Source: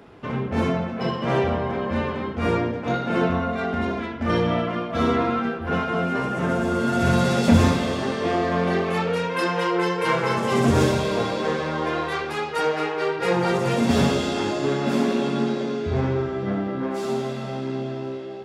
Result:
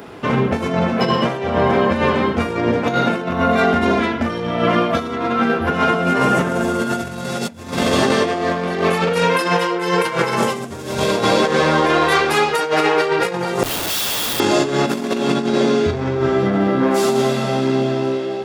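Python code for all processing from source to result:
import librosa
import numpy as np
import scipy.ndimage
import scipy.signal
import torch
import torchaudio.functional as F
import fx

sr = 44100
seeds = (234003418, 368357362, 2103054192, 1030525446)

y = fx.chain(x, sr, fx.steep_highpass(hz=2900.0, slope=48),
    fx.schmitt(flips_db=-35.5), at=(13.63, 14.4))
y = fx.high_shelf(y, sr, hz=7800.0, db=10.0)
y = fx.over_compress(y, sr, threshold_db=-25.0, ratio=-0.5)
y = fx.low_shelf(y, sr, hz=100.0, db=-9.5)
y = y * 10.0 ** (9.0 / 20.0)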